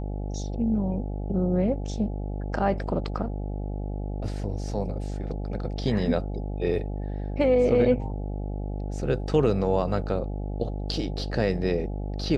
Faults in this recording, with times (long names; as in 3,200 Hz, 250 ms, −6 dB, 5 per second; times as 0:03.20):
mains buzz 50 Hz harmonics 17 −31 dBFS